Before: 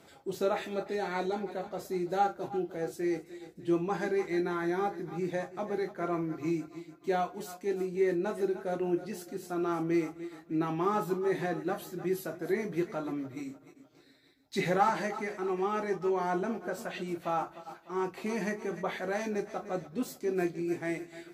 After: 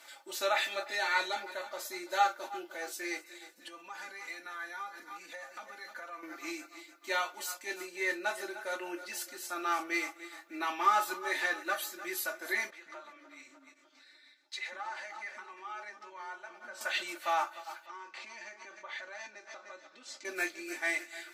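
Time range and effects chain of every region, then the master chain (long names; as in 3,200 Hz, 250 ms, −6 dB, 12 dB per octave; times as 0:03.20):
0:03.53–0:06.23: comb filter 4.1 ms, depth 80% + downward compressor, threshold −41 dBFS
0:12.70–0:16.81: downward compressor 3 to 1, threshold −44 dBFS + high-frequency loss of the air 64 metres + multiband delay without the direct sound highs, lows 160 ms, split 390 Hz
0:17.86–0:20.25: low-pass filter 6,500 Hz 24 dB per octave + downward compressor 4 to 1, threshold −45 dBFS
whole clip: high-pass filter 1,200 Hz 12 dB per octave; dynamic equaliser 3,200 Hz, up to +3 dB, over −49 dBFS, Q 0.77; comb filter 3.4 ms, depth 86%; level +6 dB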